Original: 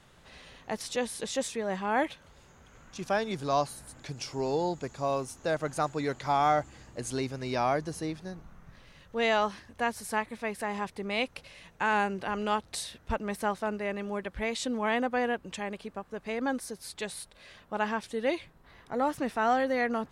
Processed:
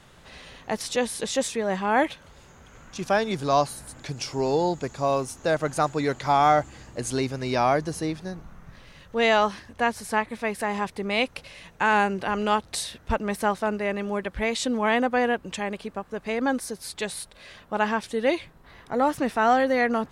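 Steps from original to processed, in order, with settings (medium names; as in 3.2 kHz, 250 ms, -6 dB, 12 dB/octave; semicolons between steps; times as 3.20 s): 9.72–10.30 s: treble shelf 11 kHz -> 6.1 kHz -7 dB; trim +6 dB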